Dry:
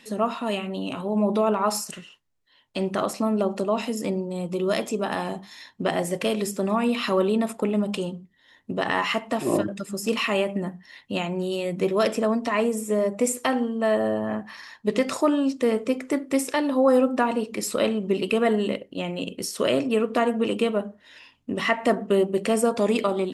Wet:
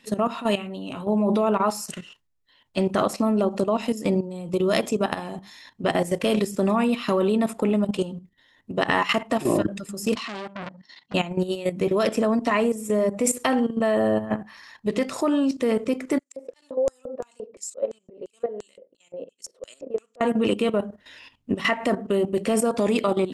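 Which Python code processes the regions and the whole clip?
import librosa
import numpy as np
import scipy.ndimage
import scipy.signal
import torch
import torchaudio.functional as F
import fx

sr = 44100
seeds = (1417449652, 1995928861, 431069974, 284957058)

y = fx.chain(x, sr, fx.level_steps(step_db=10),
    fx.cabinet(low_hz=140.0, low_slope=24, high_hz=7200.0, hz=(530.0, 1700.0, 2500.0, 4400.0), db=(-9, -5, -7, 7)),
    fx.transformer_sat(knee_hz=2300.0), at=(10.15, 11.14))
y = fx.chain(y, sr, fx.auto_swell(attack_ms=116.0),
    fx.filter_lfo_bandpass(shape='square', hz=2.9, low_hz=520.0, high_hz=7100.0, q=5.3), at=(16.19, 20.21))
y = fx.low_shelf(y, sr, hz=100.0, db=7.5)
y = fx.level_steps(y, sr, step_db=13)
y = F.gain(torch.from_numpy(y), 5.5).numpy()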